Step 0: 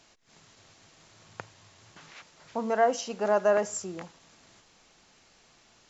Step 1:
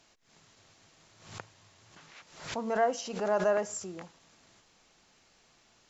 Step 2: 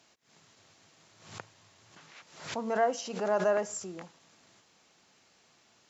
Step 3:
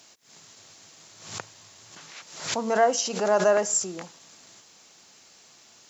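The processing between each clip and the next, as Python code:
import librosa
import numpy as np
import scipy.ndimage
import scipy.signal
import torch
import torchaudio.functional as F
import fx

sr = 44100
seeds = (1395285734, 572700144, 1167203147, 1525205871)

y1 = fx.pre_swell(x, sr, db_per_s=95.0)
y1 = y1 * 10.0 ** (-4.0 / 20.0)
y2 = scipy.signal.sosfilt(scipy.signal.butter(2, 100.0, 'highpass', fs=sr, output='sos'), y1)
y3 = fx.bass_treble(y2, sr, bass_db=-2, treble_db=9)
y3 = y3 * 10.0 ** (6.5 / 20.0)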